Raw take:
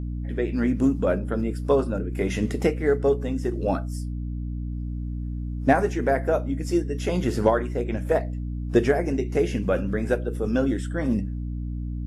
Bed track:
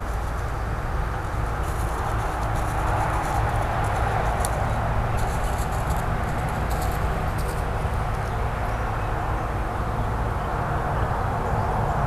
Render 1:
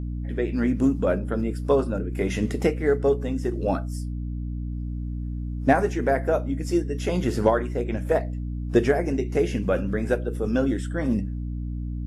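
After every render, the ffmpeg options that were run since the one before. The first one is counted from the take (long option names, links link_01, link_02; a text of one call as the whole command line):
ffmpeg -i in.wav -af anull out.wav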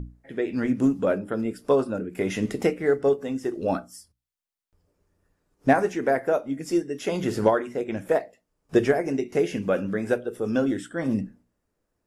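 ffmpeg -i in.wav -af "bandreject=frequency=60:width_type=h:width=6,bandreject=frequency=120:width_type=h:width=6,bandreject=frequency=180:width_type=h:width=6,bandreject=frequency=240:width_type=h:width=6,bandreject=frequency=300:width_type=h:width=6" out.wav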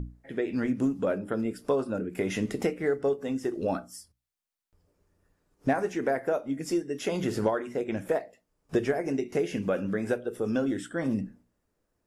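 ffmpeg -i in.wav -af "acompressor=threshold=-27dB:ratio=2" out.wav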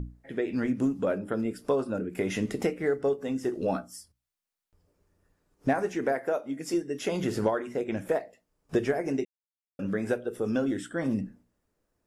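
ffmpeg -i in.wav -filter_complex "[0:a]asettb=1/sr,asplit=3[link_01][link_02][link_03];[link_01]atrim=end=3.374[link_04];[link_02]atrim=start=3.37:end=3.82,asetpts=PTS-STARTPTS,afade=type=in:duration=0.004:curve=qsin,afade=type=out:start_time=0.446:duration=0.004:curve=qsin,asplit=2[link_05][link_06];[link_06]adelay=16,volume=-8.5dB[link_07];[link_05][link_07]amix=inputs=2:normalize=0,atrim=end_sample=19845[link_08];[link_03]atrim=start=3.816[link_09];[link_04][link_08]acrossfade=duration=0.004:curve1=hsin:curve2=qsin[link_10];[link_10][link_09]acrossfade=duration=0.004:curve1=qsin:curve2=hsin,asettb=1/sr,asplit=3[link_11][link_12][link_13];[link_11]atrim=end=6.124[link_14];[link_12]atrim=start=6.12:end=6.74,asetpts=PTS-STARTPTS,afade=type=in:duration=0.004:curve=qsin,afade=type=out:start_time=0.616:duration=0.004:curve=qsin,highpass=frequency=250:poles=1[link_15];[link_13]atrim=start=6.736[link_16];[link_14][link_15]acrossfade=duration=0.004:curve1=hsin:curve2=qsin[link_17];[link_17][link_16]acrossfade=duration=0.004:curve1=qsin:curve2=hsin,asplit=3[link_18][link_19][link_20];[link_18]atrim=end=9.25,asetpts=PTS-STARTPTS,afade=type=out:start_time=9.246:duration=0.004:curve=hsin[link_21];[link_19]atrim=start=9.25:end=9.79,asetpts=PTS-STARTPTS,volume=0[link_22];[link_20]atrim=start=9.79,asetpts=PTS-STARTPTS,afade=type=in:duration=0.004:curve=hsin[link_23];[link_21][link_22][link_23]concat=n=3:v=0:a=1" out.wav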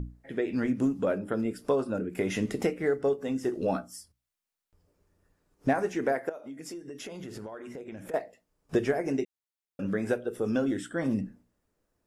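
ffmpeg -i in.wav -filter_complex "[0:a]asettb=1/sr,asplit=3[link_01][link_02][link_03];[link_01]atrim=end=6.294[link_04];[link_02]atrim=start=6.29:end=8.14,asetpts=PTS-STARTPTS,afade=type=in:duration=0.004:curve=qsin,afade=type=out:start_time=1.846:duration=0.004:curve=qsin,acompressor=threshold=-38dB:ratio=6:attack=3.2:release=140:knee=1:detection=peak[link_05];[link_03]atrim=start=8.136[link_06];[link_04][link_05]acrossfade=duration=0.004:curve1=hsin:curve2=qsin[link_07];[link_07][link_06]acrossfade=duration=0.004:curve1=qsin:curve2=hsin" out.wav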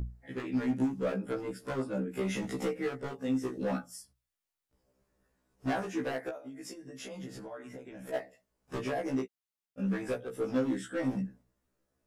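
ffmpeg -i in.wav -af "asoftclip=type=hard:threshold=-25dB,afftfilt=real='re*1.73*eq(mod(b,3),0)':imag='im*1.73*eq(mod(b,3),0)':win_size=2048:overlap=0.75" out.wav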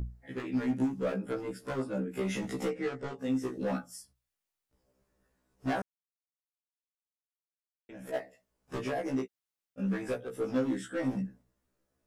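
ffmpeg -i in.wav -filter_complex "[0:a]asettb=1/sr,asplit=3[link_01][link_02][link_03];[link_01]atrim=end=2.704[link_04];[link_02]atrim=start=2.7:end=3.19,asetpts=PTS-STARTPTS,afade=type=in:duration=0.004:curve=qsin,afade=type=out:start_time=0.486:duration=0.004:curve=qsin,lowpass=frequency=8300:width=0.5412,lowpass=frequency=8300:width=1.3066[link_05];[link_03]atrim=start=3.186[link_06];[link_04][link_05]acrossfade=duration=0.004:curve1=hsin:curve2=qsin[link_07];[link_07][link_06]acrossfade=duration=0.004:curve1=qsin:curve2=hsin,asplit=3[link_08][link_09][link_10];[link_08]atrim=end=5.82,asetpts=PTS-STARTPTS,afade=type=out:start_time=5.816:duration=0.004:curve=hsin[link_11];[link_09]atrim=start=5.82:end=7.89,asetpts=PTS-STARTPTS,volume=0[link_12];[link_10]atrim=start=7.89,asetpts=PTS-STARTPTS,afade=type=in:duration=0.004:curve=hsin[link_13];[link_11][link_12][link_13]concat=n=3:v=0:a=1" out.wav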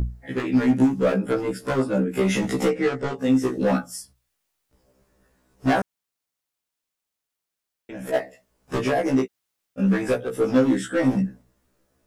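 ffmpeg -i in.wav -af "volume=11.5dB" out.wav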